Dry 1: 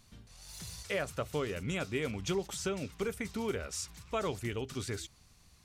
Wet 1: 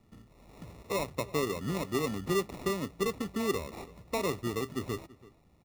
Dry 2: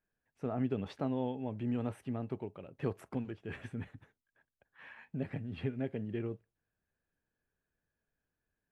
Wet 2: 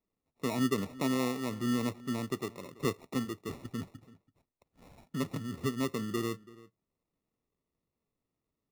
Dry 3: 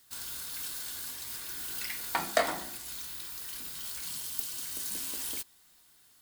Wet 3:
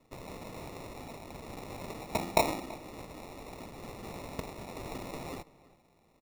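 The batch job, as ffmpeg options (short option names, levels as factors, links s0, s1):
-filter_complex "[0:a]equalizer=f=310:w=0.45:g=11,acrossover=split=160[s0][s1];[s1]acrusher=samples=28:mix=1:aa=0.000001[s2];[s0][s2]amix=inputs=2:normalize=0,asplit=2[s3][s4];[s4]adelay=332.4,volume=0.1,highshelf=f=4000:g=-7.48[s5];[s3][s5]amix=inputs=2:normalize=0,volume=0.531"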